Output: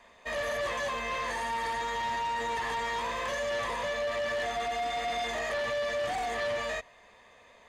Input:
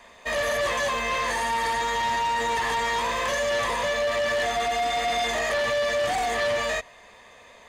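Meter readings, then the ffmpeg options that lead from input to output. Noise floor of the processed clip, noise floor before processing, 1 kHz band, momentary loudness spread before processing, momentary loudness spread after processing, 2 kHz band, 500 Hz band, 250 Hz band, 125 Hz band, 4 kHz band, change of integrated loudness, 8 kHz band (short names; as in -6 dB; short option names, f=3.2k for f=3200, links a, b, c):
-58 dBFS, -51 dBFS, -6.5 dB, 1 LU, 1 LU, -7.0 dB, -6.5 dB, -6.5 dB, -6.5 dB, -8.0 dB, -7.0 dB, -10.0 dB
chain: -af "highshelf=f=5.1k:g=-5.5,volume=-6.5dB"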